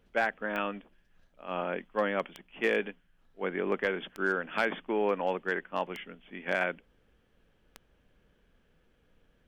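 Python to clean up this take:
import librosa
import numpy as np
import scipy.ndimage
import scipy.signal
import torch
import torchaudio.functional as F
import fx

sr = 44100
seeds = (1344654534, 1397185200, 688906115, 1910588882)

y = fx.fix_declip(x, sr, threshold_db=-18.0)
y = fx.fix_declick_ar(y, sr, threshold=10.0)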